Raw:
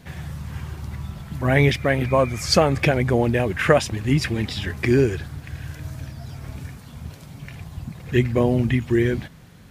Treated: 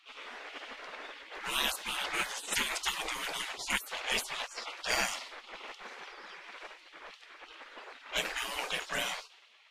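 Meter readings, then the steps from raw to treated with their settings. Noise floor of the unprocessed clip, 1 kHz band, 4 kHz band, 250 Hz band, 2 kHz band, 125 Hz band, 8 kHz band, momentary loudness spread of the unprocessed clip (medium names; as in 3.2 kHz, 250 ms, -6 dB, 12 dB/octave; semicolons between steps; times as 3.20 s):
-45 dBFS, -10.0 dB, -3.5 dB, -28.0 dB, -7.5 dB, -37.5 dB, -2.5 dB, 18 LU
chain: level-controlled noise filter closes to 1.7 kHz, open at -13.5 dBFS; spectral gate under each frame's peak -30 dB weak; trim +8.5 dB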